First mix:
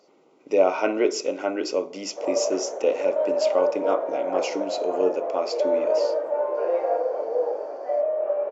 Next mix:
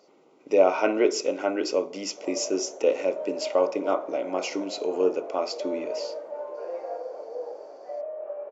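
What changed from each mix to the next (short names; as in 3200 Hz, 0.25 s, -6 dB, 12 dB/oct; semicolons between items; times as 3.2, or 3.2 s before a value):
background -10.5 dB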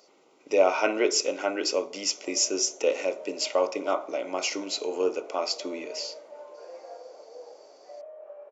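background -7.5 dB; master: add tilt +2.5 dB/oct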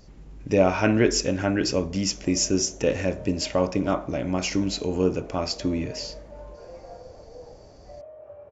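speech: remove Butterworth band-stop 1700 Hz, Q 4.5; master: remove HPF 390 Hz 24 dB/oct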